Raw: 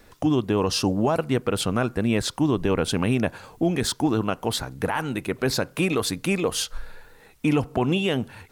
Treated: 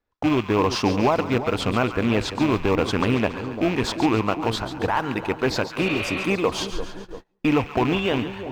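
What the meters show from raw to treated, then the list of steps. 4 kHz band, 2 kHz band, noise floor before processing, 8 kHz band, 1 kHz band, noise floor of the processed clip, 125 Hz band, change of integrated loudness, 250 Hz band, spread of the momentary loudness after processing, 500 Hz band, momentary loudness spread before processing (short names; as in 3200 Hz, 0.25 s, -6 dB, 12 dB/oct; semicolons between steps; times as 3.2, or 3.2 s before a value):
-0.5 dB, +3.5 dB, -54 dBFS, -6.5 dB, +5.0 dB, -58 dBFS, -0.5 dB, +1.5 dB, +1.0 dB, 6 LU, +2.0 dB, 5 LU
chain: rattling part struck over -25 dBFS, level -21 dBFS; in parallel at -10.5 dB: decimation with a swept rate 27×, swing 160% 0.91 Hz; on the sum: fifteen-band EQ 160 Hz -6 dB, 1000 Hz +6 dB, 10000 Hz -12 dB; on a send: split-band echo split 940 Hz, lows 0.344 s, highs 0.14 s, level -10.5 dB; on the sum: gate -35 dBFS, range -30 dB; spectral repair 5.87–6.23, 420–4600 Hz; high shelf 11000 Hz -10 dB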